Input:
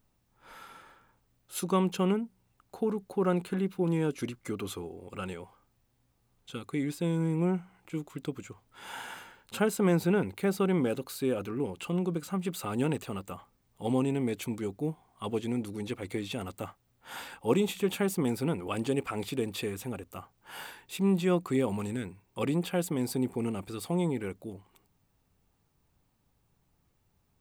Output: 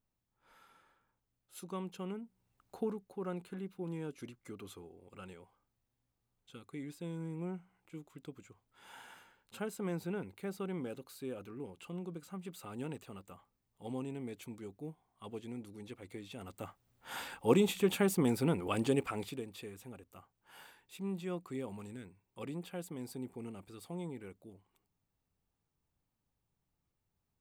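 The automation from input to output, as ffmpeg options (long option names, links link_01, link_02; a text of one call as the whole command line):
ffmpeg -i in.wav -af "volume=7dB,afade=type=in:start_time=2.12:duration=0.66:silence=0.316228,afade=type=out:start_time=2.78:duration=0.25:silence=0.398107,afade=type=in:start_time=16.33:duration=0.79:silence=0.266073,afade=type=out:start_time=18.93:duration=0.52:silence=0.251189" out.wav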